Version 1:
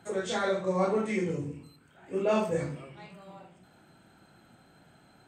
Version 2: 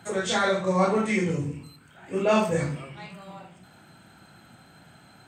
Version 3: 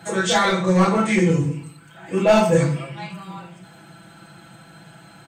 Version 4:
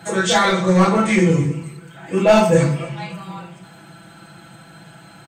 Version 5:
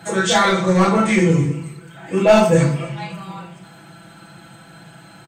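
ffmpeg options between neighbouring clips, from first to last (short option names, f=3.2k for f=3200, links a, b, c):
-af "highpass=59,equalizer=f=410:t=o:w=1.7:g=-6,volume=8.5dB"
-af "aeval=exprs='clip(val(0),-1,0.126)':c=same,aecho=1:1:6:0.96,volume=4dB"
-af "aecho=1:1:277|554|831:0.0891|0.0303|0.0103,volume=2.5dB"
-filter_complex "[0:a]asplit=2[a][b];[b]adelay=36,volume=-12.5dB[c];[a][c]amix=inputs=2:normalize=0"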